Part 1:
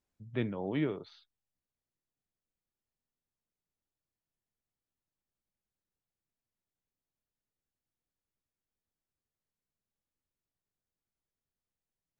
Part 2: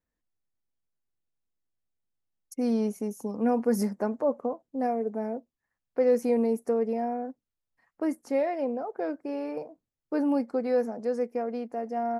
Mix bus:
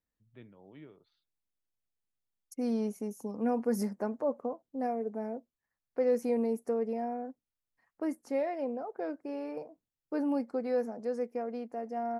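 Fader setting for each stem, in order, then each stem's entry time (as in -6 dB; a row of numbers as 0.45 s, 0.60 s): -19.5 dB, -5.0 dB; 0.00 s, 0.00 s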